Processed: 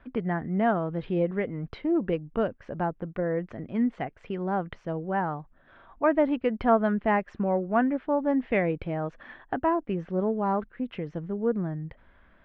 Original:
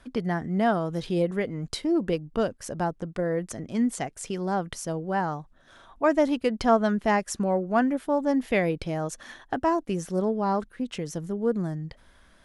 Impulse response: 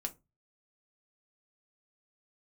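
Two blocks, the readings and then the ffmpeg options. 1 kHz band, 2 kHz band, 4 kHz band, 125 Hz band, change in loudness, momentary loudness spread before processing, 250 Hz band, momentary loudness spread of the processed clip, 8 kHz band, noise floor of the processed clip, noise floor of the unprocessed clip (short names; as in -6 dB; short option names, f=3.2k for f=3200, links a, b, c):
-1.0 dB, -1.5 dB, under -10 dB, -1.0 dB, -1.0 dB, 9 LU, -1.0 dB, 10 LU, under -35 dB, -59 dBFS, -58 dBFS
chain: -af "lowpass=f=2.6k:w=0.5412,lowpass=f=2.6k:w=1.3066,volume=-1dB"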